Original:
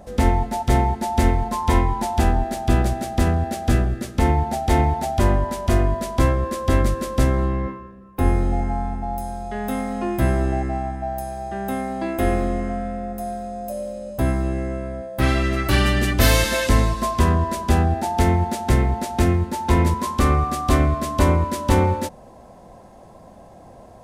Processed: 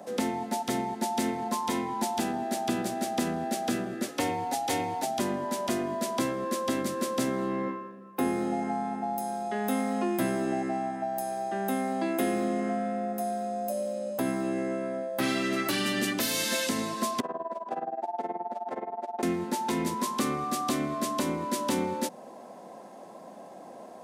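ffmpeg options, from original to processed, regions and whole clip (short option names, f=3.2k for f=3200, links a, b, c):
-filter_complex "[0:a]asettb=1/sr,asplit=3[a][b][c];[a]atrim=end=4.084[d];[b]atrim=start=4.08:end=5.03,asetpts=PTS-STARTPTS,afade=t=in:d=0.004:c=qsin,afade=t=out:st=0.946:d=0.004:c=qsin,equalizer=f=200:t=o:w=0.87:g=-12,aecho=1:1:4.1:0.51,atrim=end_sample=41895,afreqshift=30[e];[c]atrim=start=5.026[f];[d][e]acrossfade=d=0.004:c1=hsin:c2=qsin[g];[g][f]acrossfade=d=0.004:c1=qsin:c2=hsin,asettb=1/sr,asplit=3[h][i][j];[h]atrim=end=17.204[k];[i]atrim=start=17.2:end=19.23,asetpts=PTS-STARTPTS,afade=t=in:d=0.004:c=qsin,afade=t=out:st=2.026:d=0.004:c=qsin,bandpass=f=680:t=q:w=2.2,tremolo=f=19:d=0.88[l];[j]atrim=start=19.226[m];[k][l]acrossfade=d=0.004:c1=hsin:c2=qsin[n];[n][m]acrossfade=d=0.004:c1=qsin:c2=hsin,highpass=f=210:w=0.5412,highpass=f=210:w=1.3066,acrossover=split=270|3000[o][p][q];[p]acompressor=threshold=-29dB:ratio=6[r];[o][r][q]amix=inputs=3:normalize=0,alimiter=limit=-17dB:level=0:latency=1:release=412"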